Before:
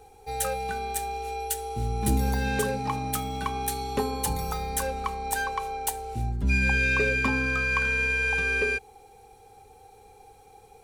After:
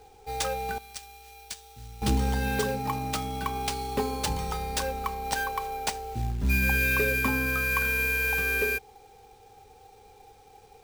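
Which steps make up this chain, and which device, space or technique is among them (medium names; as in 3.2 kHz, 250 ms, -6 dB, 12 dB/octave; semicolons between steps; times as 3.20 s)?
early companding sampler (sample-rate reducer 14 kHz, jitter 0%; companded quantiser 6-bit); 0.78–2.02 s: amplifier tone stack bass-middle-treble 5-5-5; trim -1 dB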